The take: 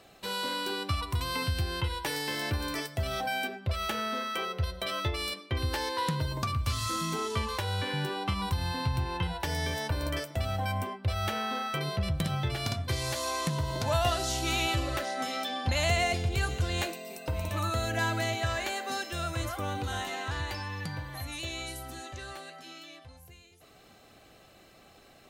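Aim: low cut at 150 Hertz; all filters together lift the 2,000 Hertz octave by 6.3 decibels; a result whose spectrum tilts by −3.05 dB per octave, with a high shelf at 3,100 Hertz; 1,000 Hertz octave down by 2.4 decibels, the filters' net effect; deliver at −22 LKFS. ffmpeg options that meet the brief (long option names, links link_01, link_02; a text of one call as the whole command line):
ffmpeg -i in.wav -af "highpass=150,equalizer=frequency=1000:width_type=o:gain=-6.5,equalizer=frequency=2000:width_type=o:gain=7,highshelf=frequency=3100:gain=7,volume=7dB" out.wav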